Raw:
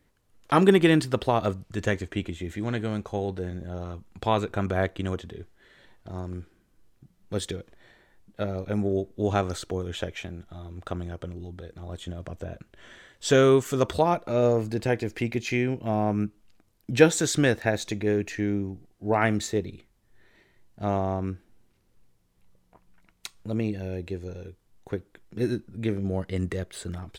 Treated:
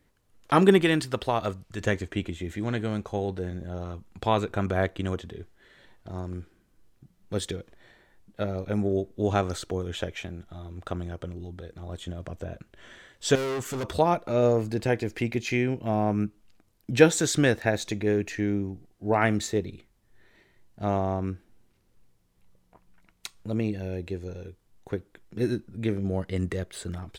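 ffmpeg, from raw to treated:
-filter_complex "[0:a]asettb=1/sr,asplit=3[a][b][c];[a]atrim=end=0.814[d];[b]atrim=start=0.81:end=1.81,asetpts=PTS-STARTPTS,afade=t=in:d=0.004:c=qsin,afade=t=out:st=0.996:d=0.004:c=qsin,equalizer=f=200:w=0.32:g=-5[e];[c]atrim=start=1.806[f];[d][e]acrossfade=d=0.004:c1=hsin:c2=qsin[g];[g][f]acrossfade=d=0.004:c1=qsin:c2=hsin,asettb=1/sr,asplit=3[h][i][j];[h]atrim=end=13.354[k];[i]atrim=start=13.35:end=13.95,asetpts=PTS-STARTPTS,afade=t=in:d=0.004:c=qsin,afade=t=out:st=0.596:d=0.004:c=qsin,volume=28dB,asoftclip=hard,volume=-28dB[l];[j]atrim=start=13.946[m];[k][l]acrossfade=d=0.004:c1=hsin:c2=qsin[n];[n][m]acrossfade=d=0.004:c1=qsin:c2=hsin"

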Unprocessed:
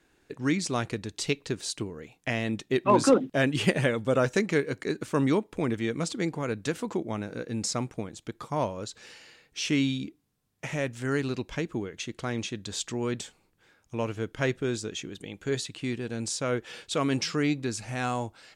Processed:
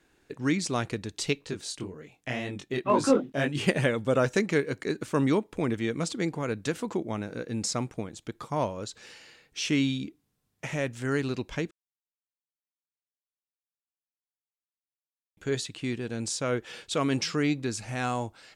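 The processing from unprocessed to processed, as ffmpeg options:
-filter_complex "[0:a]asplit=3[a][b][c];[a]afade=t=out:st=1.38:d=0.02[d];[b]flanger=delay=20:depth=4.4:speed=2,afade=t=in:st=1.38:d=0.02,afade=t=out:st=3.67:d=0.02[e];[c]afade=t=in:st=3.67:d=0.02[f];[d][e][f]amix=inputs=3:normalize=0,asplit=3[g][h][i];[g]atrim=end=11.71,asetpts=PTS-STARTPTS,afade=t=out:st=11.706:d=0.004:c=hsin[j];[h]atrim=start=11.71:end=15.37,asetpts=PTS-STARTPTS,volume=0[k];[i]atrim=start=15.37,asetpts=PTS-STARTPTS,afade=t=in:d=0.004:c=hsin[l];[j][k][l]concat=n=3:v=0:a=1"

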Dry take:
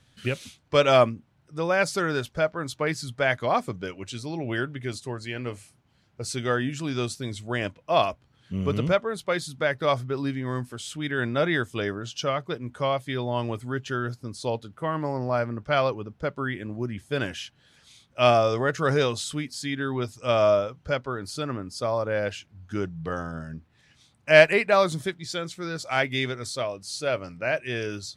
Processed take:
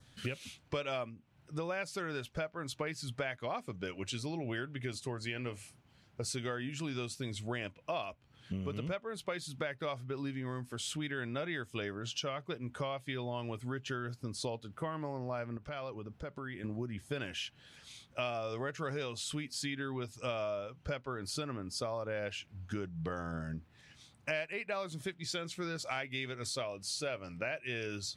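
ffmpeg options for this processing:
-filter_complex "[0:a]asettb=1/sr,asplit=3[a][b][c];[a]atrim=end=15.574[d];[b]atrim=start=15.57:end=16.64,asetpts=PTS-STARTPTS,afade=t=in:d=0.004:c=qsin,afade=t=out:st=1.066:d=0.004:c=qsin,acompressor=threshold=-41dB:ratio=4:attack=3.2:release=140:knee=1:detection=peak[e];[c]atrim=start=16.636[f];[d][e]acrossfade=d=0.004:c1=hsin:c2=qsin[g];[g][f]acrossfade=d=0.004:c1=qsin:c2=hsin,adynamicequalizer=threshold=0.00631:dfrequency=2600:dqfactor=2.5:tfrequency=2600:tqfactor=2.5:attack=5:release=100:ratio=0.375:range=3:mode=boostabove:tftype=bell,acompressor=threshold=-35dB:ratio=8"

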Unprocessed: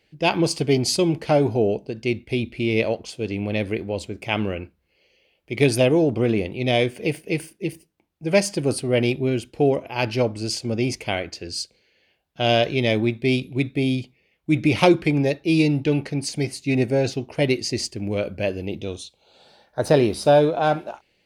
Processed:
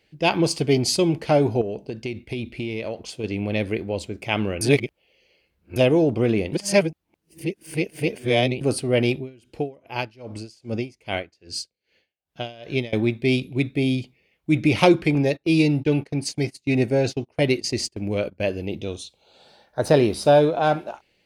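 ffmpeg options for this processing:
-filter_complex "[0:a]asettb=1/sr,asplit=3[a][b][c];[a]atrim=end=1.614[d];[b]atrim=start=1.61:end=3.24,asetpts=PTS-STARTPTS,afade=t=in:d=0.004:c=qsin,afade=t=out:st=1.626:d=0.004:c=qsin,acompressor=threshold=-24dB:ratio=6:attack=3.2:release=140:knee=1:detection=peak[e];[c]atrim=start=3.236[f];[d][e]acrossfade=d=0.004:c1=hsin:c2=qsin[g];[g][f]acrossfade=d=0.004:c1=qsin:c2=hsin,asettb=1/sr,asplit=3[h][i][j];[h]atrim=end=9.164[k];[i]atrim=start=9.16:end=12.93,asetpts=PTS-STARTPTS,afade=t=in:d=0.004:c=qsin,afade=t=out:st=3.766:d=0.004:c=qsin,aeval=exprs='val(0)*pow(10,-27*(0.5-0.5*cos(2*PI*2.5*n/s))/20)':c=same[l];[j]atrim=start=12.926[m];[k][l]acrossfade=d=0.004:c1=hsin:c2=qsin[n];[n][m]acrossfade=d=0.004:c1=qsin:c2=hsin,asettb=1/sr,asplit=3[o][p][q];[o]atrim=end=15.154[r];[p]atrim=start=15.15:end=18.43,asetpts=PTS-STARTPTS,afade=t=in:d=0.004:c=qsin,afade=t=out:st=3.276:d=0.004:c=qsin,agate=range=-22dB:threshold=-32dB:ratio=16:release=100:detection=peak[s];[q]atrim=start=18.426[t];[r][s]acrossfade=d=0.004:c1=hsin:c2=qsin[u];[u][t]acrossfade=d=0.004:c1=qsin:c2=hsin,asplit=5[v][w][x][y][z];[v]atrim=end=4.612[aa];[w]atrim=start=4.608:end=5.762,asetpts=PTS-STARTPTS,areverse[ab];[x]atrim=start=5.758:end=6.532[ac];[y]atrim=start=6.528:end=8.612,asetpts=PTS-STARTPTS,areverse[ad];[z]atrim=start=8.608[ae];[aa][ab]acrossfade=d=0.004:c1=hsin:c2=hsin[af];[af][ac]acrossfade=d=0.004:c1=hsin:c2=hsin[ag];[ag][ad]acrossfade=d=0.004:c1=hsin:c2=hsin[ah];[ah][ae]acrossfade=d=0.004:c1=hsin:c2=hsin"

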